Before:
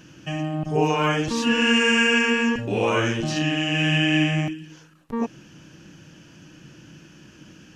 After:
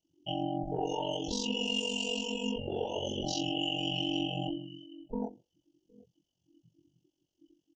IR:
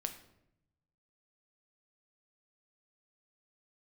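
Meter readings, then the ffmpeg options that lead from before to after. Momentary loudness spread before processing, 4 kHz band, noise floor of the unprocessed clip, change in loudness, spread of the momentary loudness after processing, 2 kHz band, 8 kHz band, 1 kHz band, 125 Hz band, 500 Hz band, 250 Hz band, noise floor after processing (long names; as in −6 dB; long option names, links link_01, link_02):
12 LU, −7.5 dB, −50 dBFS, −12.0 dB, 8 LU, −19.5 dB, −8.0 dB, −11.0 dB, −15.5 dB, −11.0 dB, −12.5 dB, −84 dBFS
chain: -filter_complex "[0:a]asoftclip=type=tanh:threshold=-12dB,asuperstop=centerf=1600:order=20:qfactor=0.84,equalizer=frequency=180:width_type=o:width=1.8:gain=-14,aecho=1:1:762:0.0841,asplit=2[link_01][link_02];[1:a]atrim=start_sample=2205,afade=type=out:start_time=0.3:duration=0.01,atrim=end_sample=13671,asetrate=61740,aresample=44100[link_03];[link_02][link_03]afir=irnorm=-1:irlink=0,volume=-1.5dB[link_04];[link_01][link_04]amix=inputs=2:normalize=0,afftdn=noise_reduction=34:noise_floor=-35,aeval=exprs='val(0)*sin(2*PI*23*n/s)':channel_layout=same,acompressor=threshold=-32dB:ratio=6,asplit=2[link_05][link_06];[link_06]adelay=24,volume=-2dB[link_07];[link_05][link_07]amix=inputs=2:normalize=0"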